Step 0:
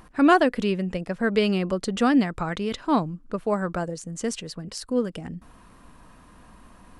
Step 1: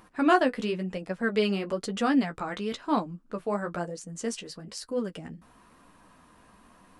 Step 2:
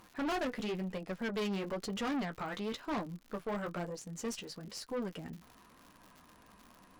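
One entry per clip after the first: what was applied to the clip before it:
low-shelf EQ 110 Hz −11.5 dB; flanger 1 Hz, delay 9.3 ms, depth 6.3 ms, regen −24%
tube saturation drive 30 dB, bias 0.45; surface crackle 130 per second −43 dBFS; parametric band 8,600 Hz −5 dB 0.34 octaves; level −2 dB

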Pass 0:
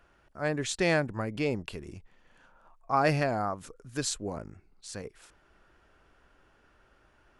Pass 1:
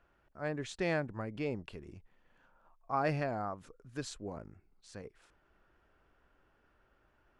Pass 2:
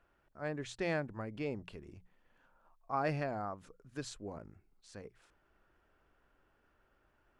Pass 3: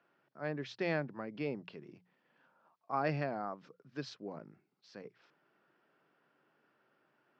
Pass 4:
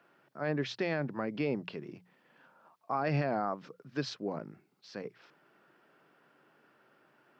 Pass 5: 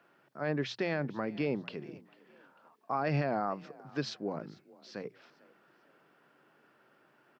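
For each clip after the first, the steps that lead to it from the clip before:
low-pass filter 2,800 Hz 6 dB per octave; level −6.5 dB
mains-hum notches 60/120/180 Hz; level −2 dB
Chebyshev band-pass filter 140–5,300 Hz, order 4; level +1 dB
brickwall limiter −29.5 dBFS, peak gain reduction 8.5 dB; level +8 dB
echo with shifted repeats 447 ms, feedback 36%, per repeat +38 Hz, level −22.5 dB

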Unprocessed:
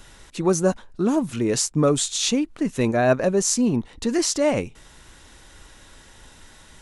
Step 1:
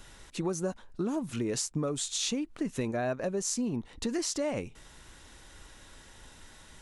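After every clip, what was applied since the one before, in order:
downward compressor 6 to 1, threshold −24 dBFS, peak gain reduction 11 dB
level −4.5 dB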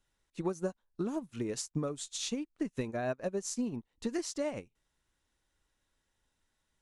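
expander for the loud parts 2.5 to 1, over −46 dBFS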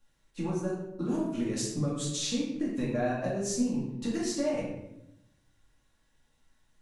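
downward compressor, threshold −34 dBFS, peak gain reduction 7 dB
rectangular room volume 270 cubic metres, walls mixed, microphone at 2.3 metres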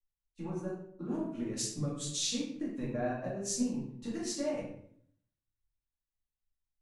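multiband upward and downward expander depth 70%
level −5.5 dB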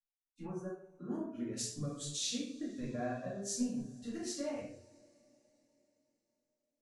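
noise reduction from a noise print of the clip's start 18 dB
coupled-rooms reverb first 0.26 s, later 4 s, from −20 dB, DRR 10.5 dB
level −4 dB

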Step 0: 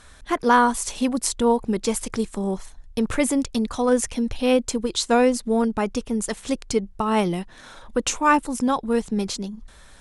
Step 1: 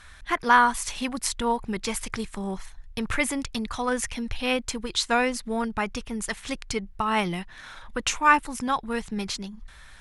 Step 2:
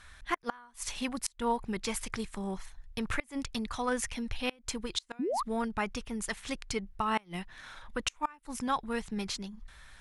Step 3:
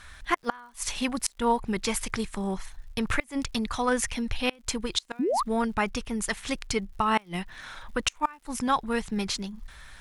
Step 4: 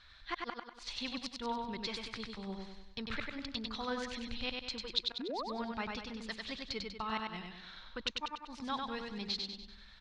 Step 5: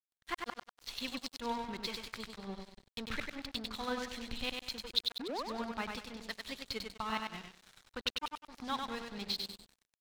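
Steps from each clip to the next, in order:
graphic EQ with 10 bands 250 Hz −7 dB, 500 Hz −8 dB, 2,000 Hz +5 dB, 8,000 Hz −5 dB
gate with flip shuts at −13 dBFS, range −30 dB; sound drawn into the spectrogram rise, 0:05.19–0:05.43, 220–1,300 Hz −26 dBFS; level −5 dB
surface crackle 130 per second −56 dBFS; level +6 dB
transistor ladder low-pass 4,600 Hz, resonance 65%; repeating echo 97 ms, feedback 47%, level −3.5 dB; level −3.5 dB
dead-zone distortion −47.5 dBFS; level +2.5 dB

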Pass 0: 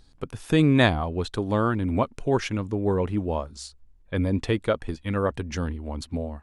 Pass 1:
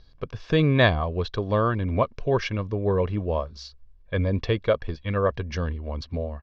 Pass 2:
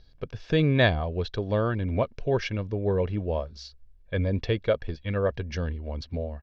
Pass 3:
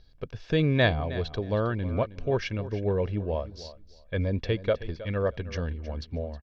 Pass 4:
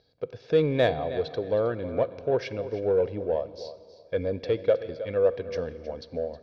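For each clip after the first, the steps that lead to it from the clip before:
Butterworth low-pass 5,600 Hz 48 dB per octave; comb filter 1.8 ms, depth 47%
parametric band 1,100 Hz −10.5 dB 0.27 octaves; level −2 dB
repeating echo 316 ms, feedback 18%, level −15.5 dB; level −1.5 dB
loudspeaker in its box 150–5,700 Hz, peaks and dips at 200 Hz −6 dB, 490 Hz +9 dB, 710 Hz +4 dB, 1,100 Hz −4 dB, 1,800 Hz −4 dB, 2,900 Hz −6 dB; dense smooth reverb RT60 2.4 s, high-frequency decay 0.9×, DRR 16 dB; in parallel at −7.5 dB: soft clipping −21.5 dBFS, distortion −9 dB; on the sum: level −3.5 dB

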